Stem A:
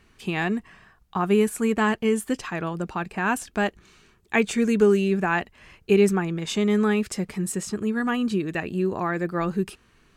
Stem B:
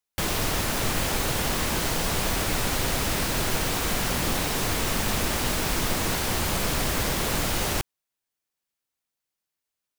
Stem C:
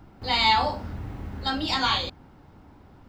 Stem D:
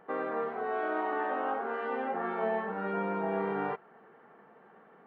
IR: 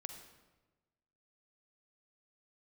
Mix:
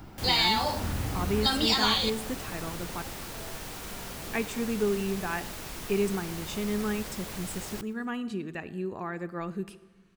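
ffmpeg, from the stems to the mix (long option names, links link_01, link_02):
-filter_complex "[0:a]volume=-12.5dB,asplit=3[link_01][link_02][link_03];[link_01]atrim=end=3.02,asetpts=PTS-STARTPTS,afade=type=out:start_time=3.016:duration=0.004:curve=hsin[link_04];[link_02]atrim=start=3.02:end=4.05,asetpts=PTS-STARTPTS,volume=0[link_05];[link_03]atrim=start=4.05,asetpts=PTS-STARTPTS,afade=type=in:duration=0.004:curve=hsin[link_06];[link_04][link_05][link_06]concat=n=3:v=0:a=1,asplit=2[link_07][link_08];[link_08]volume=-3dB[link_09];[1:a]acrusher=bits=4:mix=0:aa=0.000001,volume=-14.5dB,asplit=2[link_10][link_11];[link_11]volume=-22dB[link_12];[2:a]highshelf=frequency=3800:gain=11.5,acompressor=threshold=-26dB:ratio=6,volume=1.5dB,asplit=2[link_13][link_14];[link_14]volume=-8dB[link_15];[3:a]adelay=950,volume=-18dB[link_16];[4:a]atrim=start_sample=2205[link_17];[link_09][link_15]amix=inputs=2:normalize=0[link_18];[link_18][link_17]afir=irnorm=-1:irlink=0[link_19];[link_12]aecho=0:1:121|242|363|484|605|726|847:1|0.47|0.221|0.104|0.0488|0.0229|0.0108[link_20];[link_07][link_10][link_13][link_16][link_19][link_20]amix=inputs=6:normalize=0"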